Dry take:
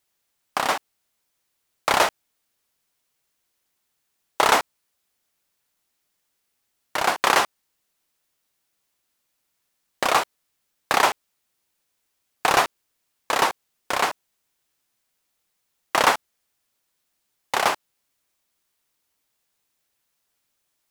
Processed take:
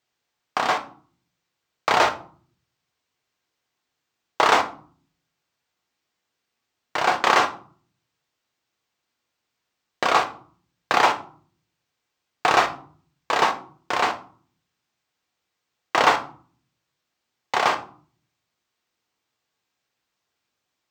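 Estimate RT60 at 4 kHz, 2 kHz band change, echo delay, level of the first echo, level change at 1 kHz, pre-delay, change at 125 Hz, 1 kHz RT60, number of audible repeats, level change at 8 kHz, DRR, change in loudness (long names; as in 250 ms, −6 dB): 0.30 s, +0.5 dB, no echo audible, no echo audible, +1.5 dB, 3 ms, +1.0 dB, 0.45 s, no echo audible, −6.0 dB, 5.5 dB, +0.5 dB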